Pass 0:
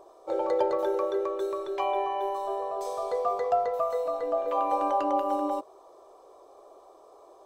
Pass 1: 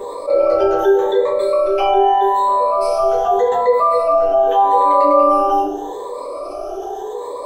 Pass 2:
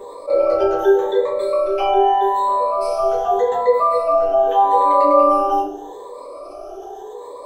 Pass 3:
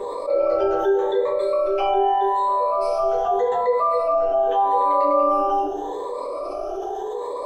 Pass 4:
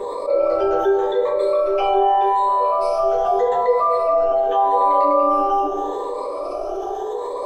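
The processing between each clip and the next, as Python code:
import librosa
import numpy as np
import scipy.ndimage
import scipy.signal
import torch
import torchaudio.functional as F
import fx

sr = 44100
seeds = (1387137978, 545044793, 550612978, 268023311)

y1 = fx.spec_ripple(x, sr, per_octave=1.0, drift_hz=0.83, depth_db=21)
y1 = fx.room_shoebox(y1, sr, seeds[0], volume_m3=44.0, walls='mixed', distance_m=1.5)
y1 = fx.env_flatten(y1, sr, amount_pct=50)
y1 = y1 * librosa.db_to_amplitude(-5.0)
y2 = fx.upward_expand(y1, sr, threshold_db=-24.0, expansion=1.5)
y3 = fx.high_shelf(y2, sr, hz=7800.0, db=-11.5)
y3 = fx.hum_notches(y3, sr, base_hz=50, count=6)
y3 = fx.env_flatten(y3, sr, amount_pct=50)
y3 = y3 * librosa.db_to_amplitude(-6.5)
y4 = fx.echo_alternate(y3, sr, ms=215, hz=1000.0, feedback_pct=66, wet_db=-11.0)
y4 = y4 * librosa.db_to_amplitude(2.0)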